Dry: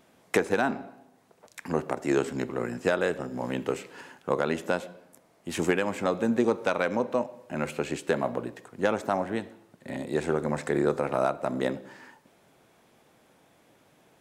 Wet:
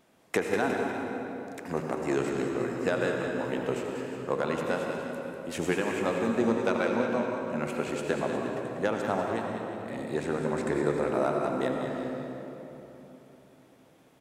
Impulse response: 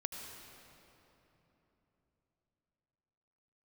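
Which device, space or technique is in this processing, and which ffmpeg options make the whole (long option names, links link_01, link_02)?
cave: -filter_complex "[0:a]aecho=1:1:194:0.355,aecho=1:1:357:0.211[link_01];[1:a]atrim=start_sample=2205[link_02];[link_01][link_02]afir=irnorm=-1:irlink=0,volume=-1.5dB"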